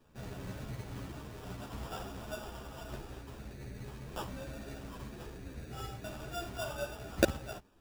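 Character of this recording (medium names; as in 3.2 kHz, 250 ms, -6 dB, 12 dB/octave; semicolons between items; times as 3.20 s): aliases and images of a low sample rate 2.1 kHz, jitter 0%; a shimmering, thickened sound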